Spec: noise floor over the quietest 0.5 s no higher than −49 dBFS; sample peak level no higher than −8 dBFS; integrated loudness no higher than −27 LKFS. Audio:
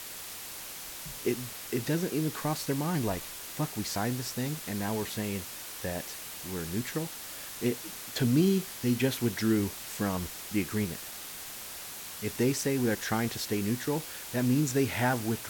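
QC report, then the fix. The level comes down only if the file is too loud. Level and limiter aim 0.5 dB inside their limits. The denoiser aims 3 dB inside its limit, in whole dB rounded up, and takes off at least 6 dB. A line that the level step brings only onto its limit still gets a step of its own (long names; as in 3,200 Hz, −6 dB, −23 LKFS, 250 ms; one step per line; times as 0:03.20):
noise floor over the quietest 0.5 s −42 dBFS: out of spec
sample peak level −14.0 dBFS: in spec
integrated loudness −31.5 LKFS: in spec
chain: broadband denoise 10 dB, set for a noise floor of −42 dBFS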